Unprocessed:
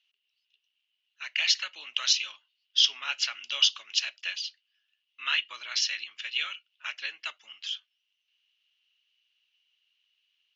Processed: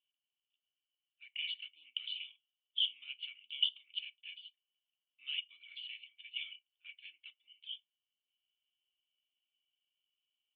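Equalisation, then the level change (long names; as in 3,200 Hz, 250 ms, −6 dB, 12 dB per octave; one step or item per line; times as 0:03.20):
first difference
dynamic equaliser 3,000 Hz, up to +6 dB, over −44 dBFS, Q 2.3
formant resonators in series i
+7.0 dB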